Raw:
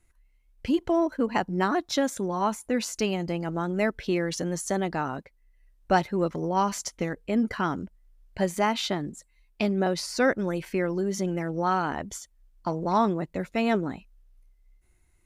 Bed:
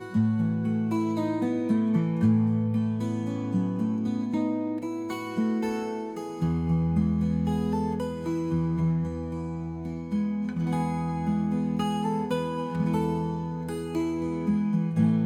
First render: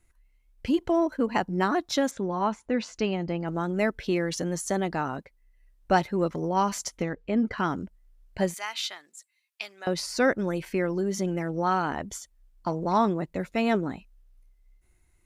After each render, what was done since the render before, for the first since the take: 2.11–3.48 s: distance through air 140 m; 7.02–7.58 s: distance through air 120 m; 8.54–9.87 s: Bessel high-pass 2 kHz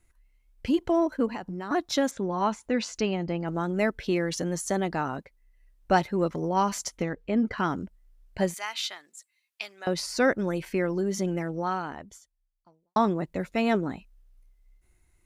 1.28–1.71 s: compression 8:1, threshold -31 dBFS; 2.38–3.01 s: treble shelf 3.3 kHz +7.5 dB; 11.36–12.96 s: fade out quadratic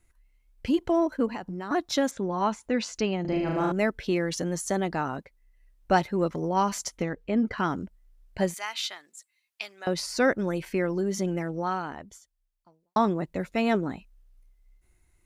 3.21–3.72 s: flutter echo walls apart 6.5 m, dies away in 1.2 s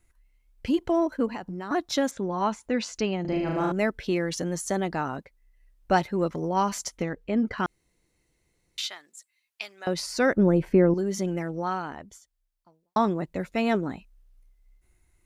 7.66–8.78 s: room tone; 10.37–10.94 s: tilt shelf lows +10 dB, about 1.3 kHz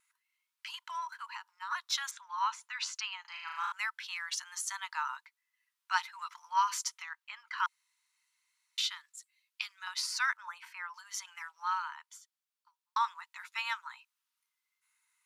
rippled Chebyshev high-pass 920 Hz, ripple 3 dB; vibrato 1.1 Hz 12 cents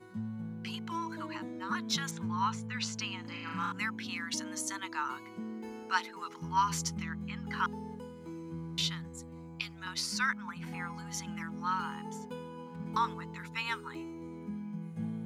add bed -15 dB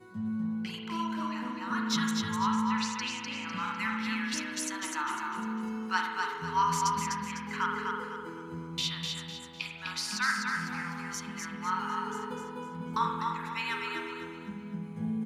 feedback delay 251 ms, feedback 39%, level -4 dB; spring tank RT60 1 s, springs 41 ms, chirp 45 ms, DRR 2 dB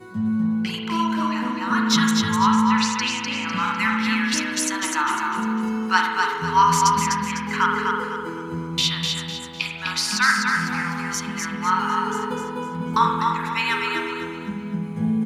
trim +11 dB

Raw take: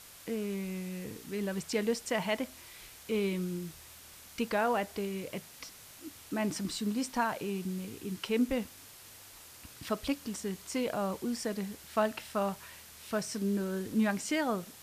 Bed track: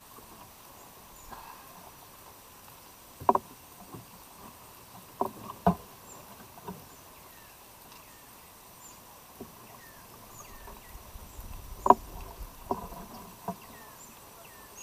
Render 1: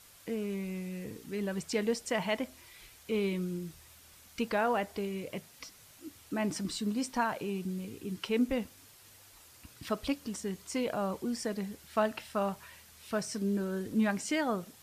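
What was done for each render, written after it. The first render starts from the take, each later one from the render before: noise reduction 6 dB, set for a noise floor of -53 dBFS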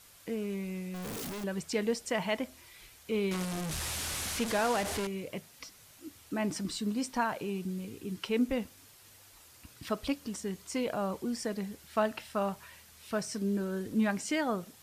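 0.94–1.44 s: one-bit comparator; 3.31–5.07 s: one-bit delta coder 64 kbps, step -29 dBFS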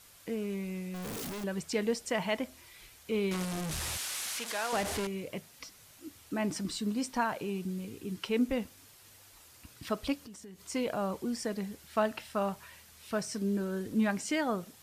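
3.97–4.73 s: high-pass 1.3 kHz 6 dB/octave; 10.15–10.61 s: compression 4:1, threshold -47 dBFS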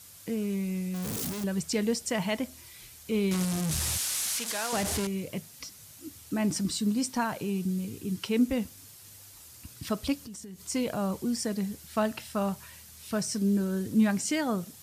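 high-pass 63 Hz; tone controls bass +9 dB, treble +8 dB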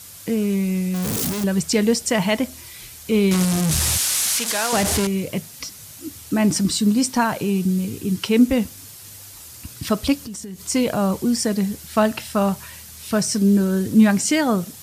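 trim +10 dB

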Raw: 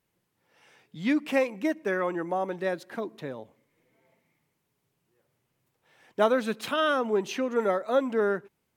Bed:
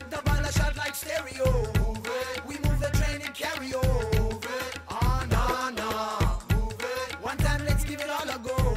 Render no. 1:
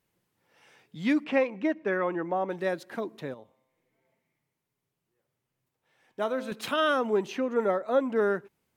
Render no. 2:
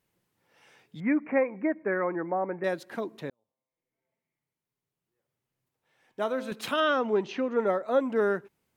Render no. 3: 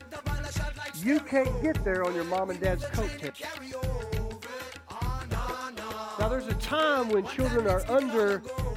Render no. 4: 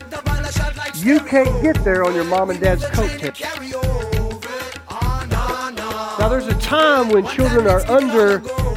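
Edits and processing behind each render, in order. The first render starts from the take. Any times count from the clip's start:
1.24–2.50 s: low-pass 3.3 kHz; 3.34–6.52 s: feedback comb 130 Hz, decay 1.2 s; 7.26–8.16 s: treble shelf 2.6 kHz -8 dB
1.00–2.64 s: Chebyshev low-pass 2.3 kHz, order 6; 3.30–6.25 s: fade in; 6.80–7.67 s: low-pass 5.7 kHz 24 dB/octave
add bed -7 dB
trim +12 dB; peak limiter -3 dBFS, peak gain reduction 1.5 dB

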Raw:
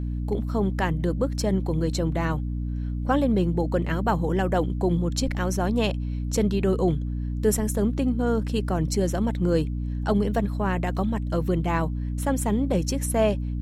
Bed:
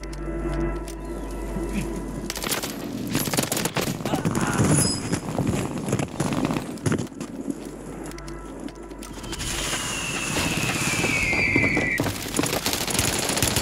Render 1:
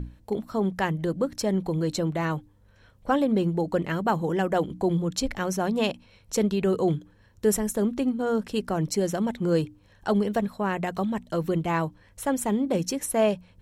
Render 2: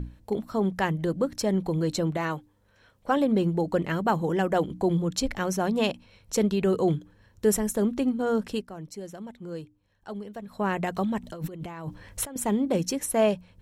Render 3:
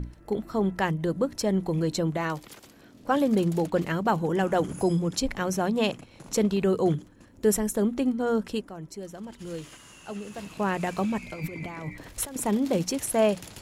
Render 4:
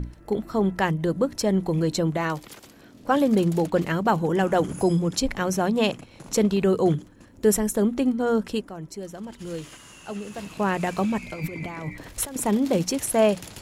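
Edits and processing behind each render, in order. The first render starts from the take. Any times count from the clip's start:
hum notches 60/120/180/240/300 Hz
2.17–3.17 s: bass shelf 160 Hz -11.5 dB; 8.53–10.58 s: dip -13.5 dB, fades 0.12 s; 11.23–12.36 s: compressor with a negative ratio -36 dBFS
add bed -22 dB
trim +3 dB

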